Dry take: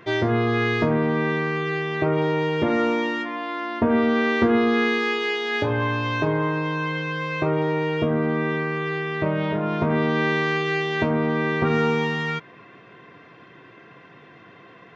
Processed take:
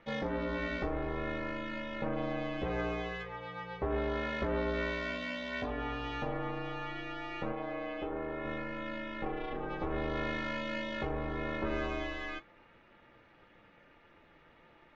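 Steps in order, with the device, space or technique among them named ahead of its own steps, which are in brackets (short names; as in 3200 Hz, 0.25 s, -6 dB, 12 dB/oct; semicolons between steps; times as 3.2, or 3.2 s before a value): alien voice (ring modulator 170 Hz; flange 0.23 Hz, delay 8.5 ms, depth 6.2 ms, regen -56%); 7.52–8.45 tone controls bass -8 dB, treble -8 dB; gain -6.5 dB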